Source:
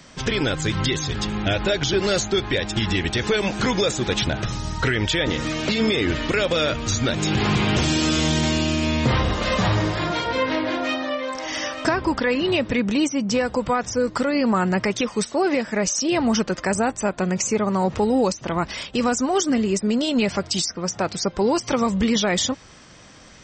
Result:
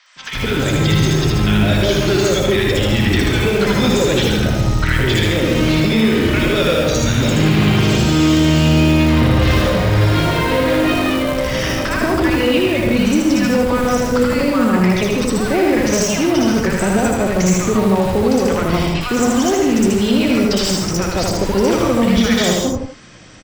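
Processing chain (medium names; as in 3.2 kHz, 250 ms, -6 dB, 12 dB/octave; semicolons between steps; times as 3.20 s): gated-style reverb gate 180 ms rising, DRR 3.5 dB; in parallel at -5 dB: Schmitt trigger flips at -21.5 dBFS; on the sum: peak limiter -11 dBFS, peak gain reduction 5.5 dB; on a send: delay 77 ms -3.5 dB; on the sum: level rider gain up to 4.5 dB; three bands offset in time mids, highs, lows 60/160 ms, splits 960/5700 Hz; trim -1 dB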